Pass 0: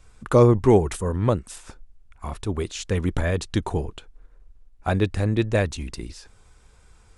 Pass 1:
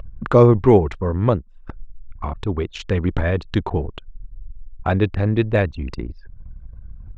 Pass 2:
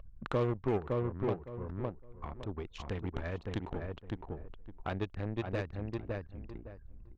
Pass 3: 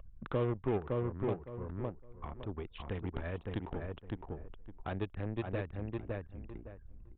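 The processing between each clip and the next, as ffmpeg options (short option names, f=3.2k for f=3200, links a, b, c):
-af "acompressor=mode=upward:threshold=-23dB:ratio=2.5,lowpass=3.6k,anlmdn=6.31,volume=3.5dB"
-filter_complex "[0:a]aeval=exprs='0.891*(cos(1*acos(clip(val(0)/0.891,-1,1)))-cos(1*PI/2))+0.0794*(cos(7*acos(clip(val(0)/0.891,-1,1)))-cos(7*PI/2))':c=same,asplit=2[a][b];[b]adelay=560,lowpass=f=1.7k:p=1,volume=-4dB,asplit=2[c][d];[d]adelay=560,lowpass=f=1.7k:p=1,volume=0.15,asplit=2[e][f];[f]adelay=560,lowpass=f=1.7k:p=1,volume=0.15[g];[c][e][g]amix=inputs=3:normalize=0[h];[a][h]amix=inputs=2:normalize=0,acompressor=threshold=-28dB:ratio=2,volume=-8.5dB"
-filter_complex "[0:a]acrossover=split=500[a][b];[b]asoftclip=type=tanh:threshold=-31dB[c];[a][c]amix=inputs=2:normalize=0,aresample=8000,aresample=44100,volume=-1dB"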